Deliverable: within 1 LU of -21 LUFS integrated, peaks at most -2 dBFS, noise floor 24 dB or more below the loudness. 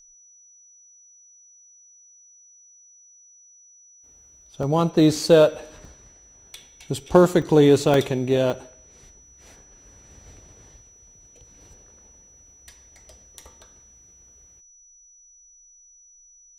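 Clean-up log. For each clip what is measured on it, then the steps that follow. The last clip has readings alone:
dropouts 7; longest dropout 1.9 ms; steady tone 5900 Hz; tone level -50 dBFS; loudness -19.0 LUFS; peak -1.0 dBFS; loudness target -21.0 LUFS
-> interpolate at 4.63/5.16/5.85/6.56/7.42/7.94/8.5, 1.9 ms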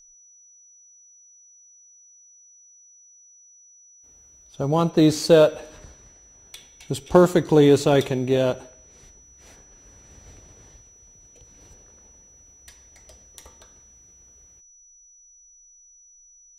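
dropouts 0; steady tone 5900 Hz; tone level -50 dBFS
-> notch 5900 Hz, Q 30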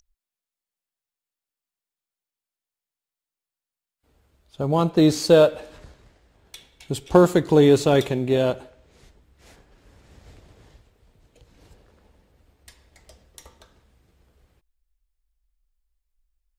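steady tone none; loudness -19.0 LUFS; peak -1.0 dBFS; loudness target -21.0 LUFS
-> gain -2 dB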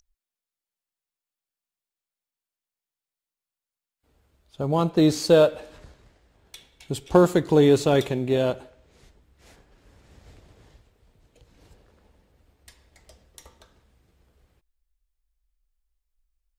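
loudness -21.0 LUFS; peak -3.0 dBFS; noise floor -91 dBFS

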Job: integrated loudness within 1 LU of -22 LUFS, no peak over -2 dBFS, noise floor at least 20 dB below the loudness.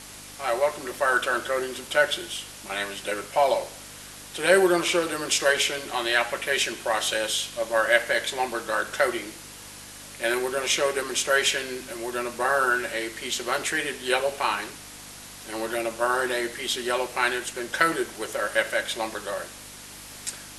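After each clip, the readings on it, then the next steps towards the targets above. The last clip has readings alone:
hum 50 Hz; harmonics up to 300 Hz; hum level -50 dBFS; noise floor -43 dBFS; noise floor target -45 dBFS; loudness -25.0 LUFS; peak -4.5 dBFS; loudness target -22.0 LUFS
-> de-hum 50 Hz, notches 6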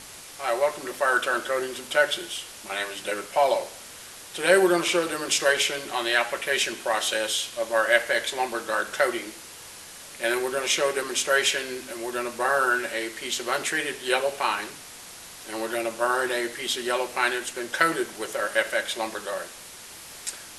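hum none; noise floor -43 dBFS; noise floor target -45 dBFS
-> noise print and reduce 6 dB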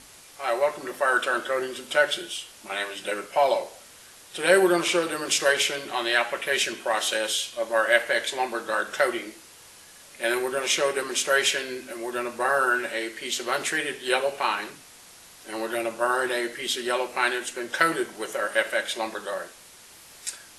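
noise floor -49 dBFS; loudness -25.5 LUFS; peak -4.0 dBFS; loudness target -22.0 LUFS
-> gain +3.5 dB; limiter -2 dBFS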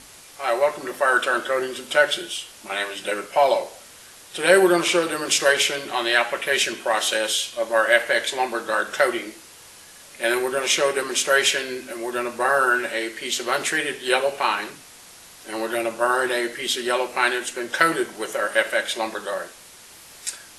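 loudness -22.0 LUFS; peak -2.0 dBFS; noise floor -46 dBFS

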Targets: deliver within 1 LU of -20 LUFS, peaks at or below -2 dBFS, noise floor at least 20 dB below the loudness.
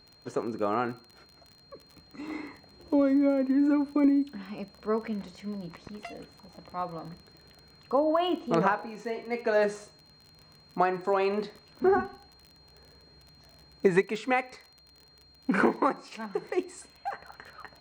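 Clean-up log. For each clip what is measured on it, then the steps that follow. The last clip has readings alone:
ticks 35/s; steady tone 4200 Hz; tone level -57 dBFS; loudness -28.5 LUFS; peak -8.5 dBFS; loudness target -20.0 LUFS
-> de-click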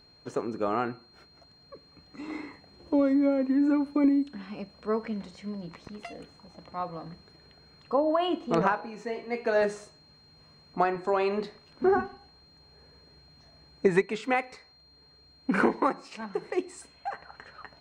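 ticks 0/s; steady tone 4200 Hz; tone level -57 dBFS
-> notch 4200 Hz, Q 30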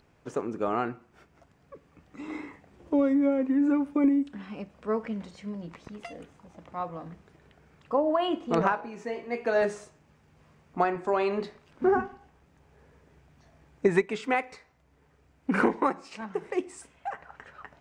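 steady tone none; loudness -28.5 LUFS; peak -8.5 dBFS; loudness target -20.0 LUFS
-> gain +8.5 dB; limiter -2 dBFS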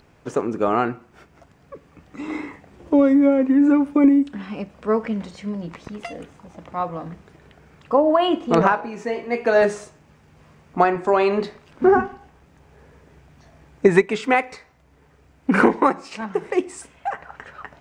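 loudness -20.0 LUFS; peak -2.0 dBFS; noise floor -55 dBFS

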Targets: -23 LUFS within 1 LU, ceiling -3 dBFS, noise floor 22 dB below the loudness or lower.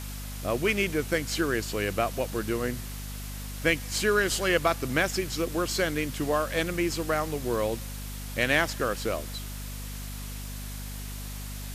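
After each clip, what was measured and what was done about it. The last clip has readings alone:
hum 50 Hz; harmonics up to 250 Hz; hum level -35 dBFS; noise floor -37 dBFS; noise floor target -51 dBFS; loudness -29.0 LUFS; peak -11.0 dBFS; loudness target -23.0 LUFS
-> de-hum 50 Hz, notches 5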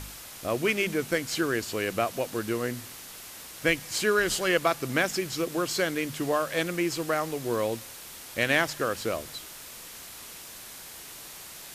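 hum none; noise floor -44 dBFS; noise floor target -50 dBFS
-> denoiser 6 dB, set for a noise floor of -44 dBFS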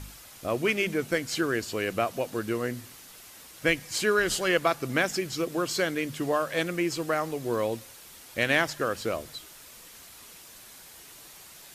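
noise floor -49 dBFS; noise floor target -50 dBFS
-> denoiser 6 dB, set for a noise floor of -49 dBFS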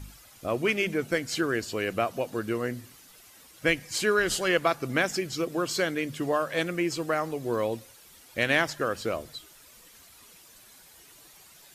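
noise floor -54 dBFS; loudness -28.0 LUFS; peak -10.5 dBFS; loudness target -23.0 LUFS
-> gain +5 dB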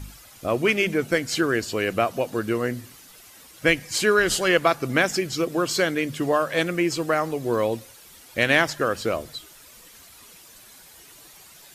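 loudness -23.0 LUFS; peak -5.5 dBFS; noise floor -49 dBFS

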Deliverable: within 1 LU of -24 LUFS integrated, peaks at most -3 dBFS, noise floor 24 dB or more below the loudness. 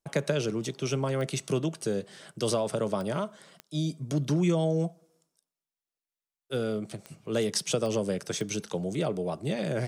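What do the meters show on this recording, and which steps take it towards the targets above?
clicks 6; loudness -30.5 LUFS; peak -13.0 dBFS; loudness target -24.0 LUFS
-> de-click; gain +6.5 dB

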